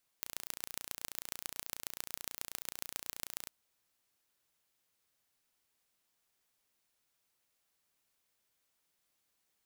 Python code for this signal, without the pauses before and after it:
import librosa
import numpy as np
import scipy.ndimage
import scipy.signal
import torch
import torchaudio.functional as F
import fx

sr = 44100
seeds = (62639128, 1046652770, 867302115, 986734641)

y = fx.impulse_train(sr, length_s=3.27, per_s=29.3, accent_every=4, level_db=-9.5)